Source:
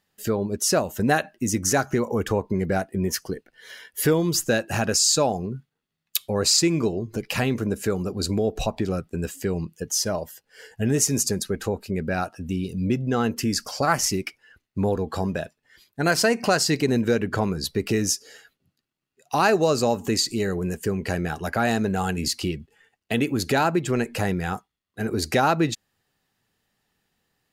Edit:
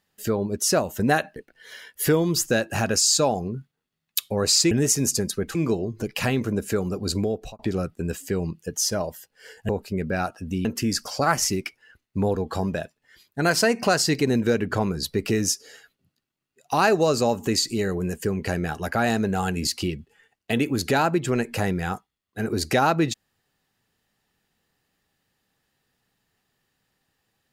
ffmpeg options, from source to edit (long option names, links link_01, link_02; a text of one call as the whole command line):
ffmpeg -i in.wav -filter_complex "[0:a]asplit=7[link_01][link_02][link_03][link_04][link_05][link_06][link_07];[link_01]atrim=end=1.362[link_08];[link_02]atrim=start=3.338:end=6.692[link_09];[link_03]atrim=start=10.828:end=11.672[link_10];[link_04]atrim=start=6.688:end=8.73,asetpts=PTS-STARTPTS,afade=type=out:start_time=1.652:duration=0.39[link_11];[link_05]atrim=start=8.73:end=10.832,asetpts=PTS-STARTPTS,afade=type=in:duration=0.004:curve=hsin[link_12];[link_06]atrim=start=11.668:end=12.632[link_13];[link_07]atrim=start=13.258[link_14];[link_08][link_09]acrossfade=duration=0.004:curve1=hsin:curve2=hsin[link_15];[link_15][link_10]acrossfade=duration=0.004:curve1=hsin:curve2=hsin[link_16];[link_11][link_12]concat=n=2:v=0:a=1[link_17];[link_16][link_17]acrossfade=duration=0.004:curve1=hsin:curve2=hsin[link_18];[link_18][link_13]acrossfade=duration=0.004:curve1=hsin:curve2=hsin[link_19];[link_19][link_14]acrossfade=duration=0.004:curve1=hsin:curve2=hsin" out.wav